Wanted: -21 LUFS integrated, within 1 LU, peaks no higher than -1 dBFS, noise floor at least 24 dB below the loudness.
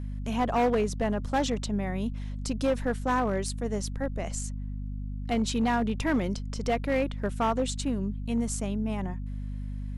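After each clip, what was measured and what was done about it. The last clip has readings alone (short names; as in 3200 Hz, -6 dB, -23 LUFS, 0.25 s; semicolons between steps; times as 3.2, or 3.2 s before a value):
clipped 1.6%; flat tops at -20.0 dBFS; hum 50 Hz; harmonics up to 250 Hz; hum level -32 dBFS; loudness -30.0 LUFS; peak -20.0 dBFS; loudness target -21.0 LUFS
-> clip repair -20 dBFS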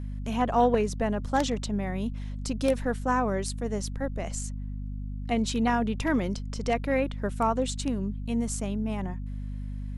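clipped 0.0%; hum 50 Hz; harmonics up to 250 Hz; hum level -32 dBFS
-> de-hum 50 Hz, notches 5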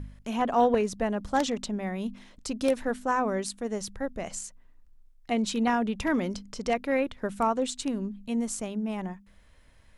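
hum none; loudness -29.5 LUFS; peak -10.5 dBFS; loudness target -21.0 LUFS
-> gain +8.5 dB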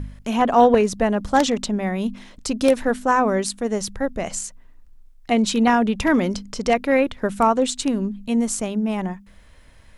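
loudness -21.0 LUFS; peak -2.0 dBFS; noise floor -49 dBFS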